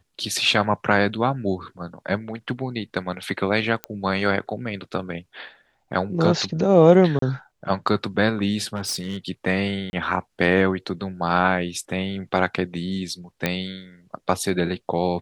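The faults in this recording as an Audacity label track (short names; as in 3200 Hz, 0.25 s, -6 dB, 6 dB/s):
3.840000	3.840000	pop -12 dBFS
7.190000	7.220000	gap 33 ms
8.750000	9.170000	clipped -23 dBFS
9.900000	9.930000	gap 31 ms
13.460000	13.460000	pop -7 dBFS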